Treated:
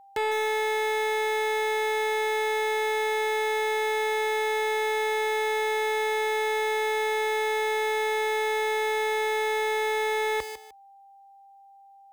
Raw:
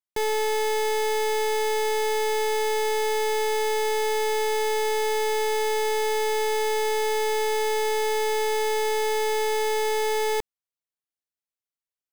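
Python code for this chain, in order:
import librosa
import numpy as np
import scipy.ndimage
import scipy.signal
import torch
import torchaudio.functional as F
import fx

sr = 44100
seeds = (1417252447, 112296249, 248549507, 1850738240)

y = scipy.signal.sosfilt(scipy.signal.butter(4, 49.0, 'highpass', fs=sr, output='sos'), x)
y = fx.peak_eq(y, sr, hz=160.0, db=-12.0, octaves=2.8)
y = fx.echo_feedback(y, sr, ms=152, feedback_pct=25, wet_db=-16.0)
y = 10.0 ** (-25.0 / 20.0) * (np.abs((y / 10.0 ** (-25.0 / 20.0) + 3.0) % 4.0 - 2.0) - 1.0)
y = y + 10.0 ** (-57.0 / 20.0) * np.sin(2.0 * np.pi * 790.0 * np.arange(len(y)) / sr)
y = y * librosa.db_to_amplitude(7.0)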